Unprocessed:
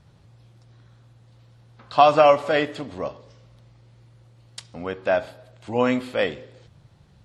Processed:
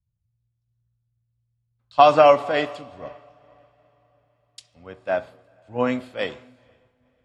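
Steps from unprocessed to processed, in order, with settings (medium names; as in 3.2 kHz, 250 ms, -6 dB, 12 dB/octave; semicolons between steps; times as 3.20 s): on a send: echo that smears into a reverb 497 ms, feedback 64%, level -16 dB; on the sum: three bands expanded up and down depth 100%; trim -7.5 dB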